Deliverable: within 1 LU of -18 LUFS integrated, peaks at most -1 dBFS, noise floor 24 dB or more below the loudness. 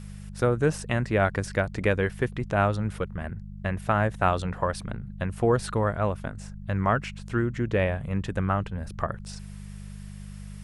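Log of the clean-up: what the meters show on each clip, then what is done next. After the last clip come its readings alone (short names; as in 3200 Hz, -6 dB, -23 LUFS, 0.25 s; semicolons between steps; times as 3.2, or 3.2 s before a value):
hum 50 Hz; harmonics up to 200 Hz; hum level -38 dBFS; loudness -27.5 LUFS; peak -8.5 dBFS; loudness target -18.0 LUFS
-> de-hum 50 Hz, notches 4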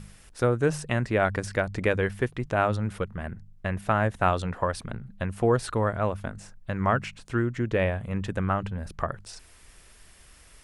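hum none; loudness -27.5 LUFS; peak -8.5 dBFS; loudness target -18.0 LUFS
-> gain +9.5 dB; limiter -1 dBFS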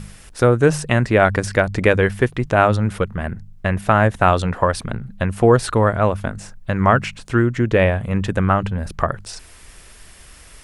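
loudness -18.5 LUFS; peak -1.0 dBFS; noise floor -44 dBFS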